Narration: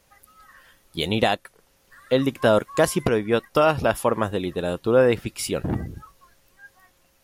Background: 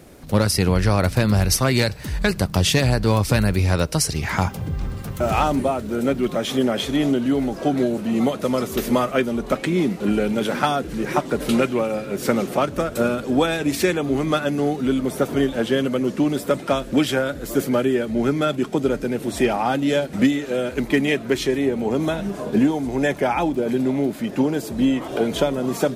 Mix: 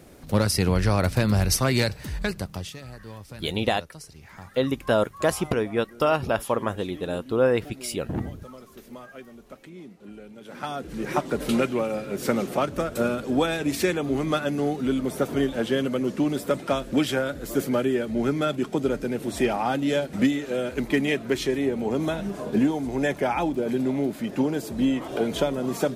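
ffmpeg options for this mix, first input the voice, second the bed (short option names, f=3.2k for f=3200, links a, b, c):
-filter_complex "[0:a]adelay=2450,volume=-3.5dB[a];[1:a]volume=15.5dB,afade=t=out:st=1.93:d=0.81:silence=0.105925,afade=t=in:st=10.44:d=0.72:silence=0.112202[b];[a][b]amix=inputs=2:normalize=0"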